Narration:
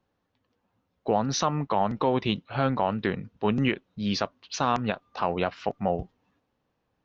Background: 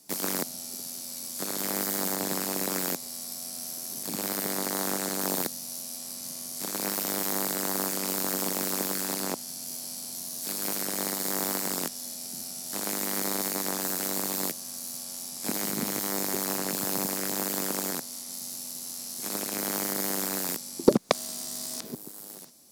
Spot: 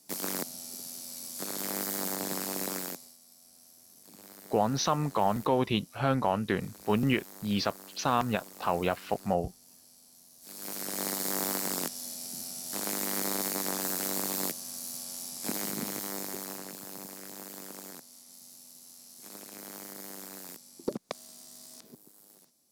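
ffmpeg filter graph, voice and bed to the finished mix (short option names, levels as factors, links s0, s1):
-filter_complex "[0:a]adelay=3450,volume=0.794[s0];[1:a]volume=5.01,afade=t=out:st=2.66:d=0.51:silence=0.158489,afade=t=in:st=10.4:d=0.7:silence=0.125893,afade=t=out:st=15.28:d=1.52:silence=0.251189[s1];[s0][s1]amix=inputs=2:normalize=0"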